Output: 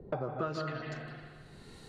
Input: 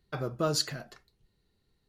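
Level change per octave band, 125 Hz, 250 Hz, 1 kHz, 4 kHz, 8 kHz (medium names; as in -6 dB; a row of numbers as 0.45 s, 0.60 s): -3.0 dB, -3.0 dB, 0.0 dB, -15.5 dB, -23.0 dB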